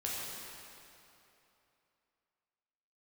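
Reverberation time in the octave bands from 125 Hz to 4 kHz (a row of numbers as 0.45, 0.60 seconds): 2.8, 2.8, 3.0, 3.0, 2.7, 2.4 seconds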